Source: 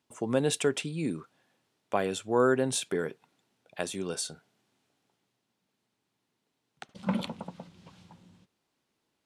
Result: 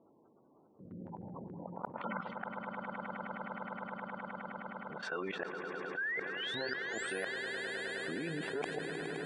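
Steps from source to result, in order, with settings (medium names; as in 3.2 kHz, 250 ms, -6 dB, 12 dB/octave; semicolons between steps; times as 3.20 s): reverse the whole clip; level-controlled noise filter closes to 360 Hz, open at -26 dBFS; de-hum 86.85 Hz, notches 3; spectral gate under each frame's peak -30 dB strong; treble shelf 2.3 kHz -12 dB; level held to a coarse grid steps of 20 dB; painted sound rise, 5.97–7.25 s, 1.5–11 kHz -51 dBFS; band-pass sweep 1.6 kHz -> 530 Hz, 8.07–9.05 s; inverted gate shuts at -42 dBFS, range -32 dB; echo with a slow build-up 104 ms, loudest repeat 8, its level -16 dB; level flattener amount 70%; trim +15.5 dB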